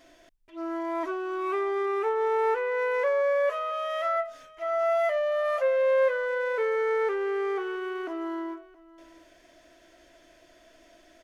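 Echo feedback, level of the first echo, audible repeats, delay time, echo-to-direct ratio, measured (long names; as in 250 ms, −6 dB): repeats not evenly spaced, −20.5 dB, 1, 671 ms, −20.5 dB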